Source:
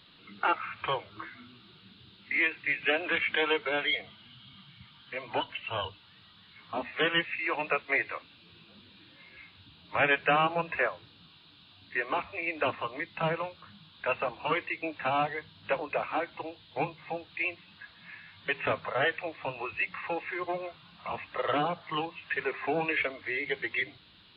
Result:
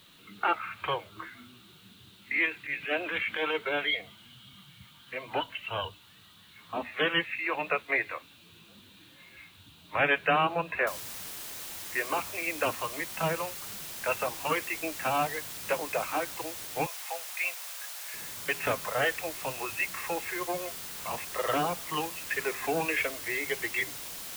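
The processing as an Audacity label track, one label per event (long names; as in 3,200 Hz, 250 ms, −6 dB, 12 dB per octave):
2.450000	3.630000	transient designer attack −12 dB, sustain +1 dB
10.870000	10.870000	noise floor change −64 dB −41 dB
16.860000	18.140000	inverse Chebyshev high-pass filter stop band from 220 Hz, stop band 50 dB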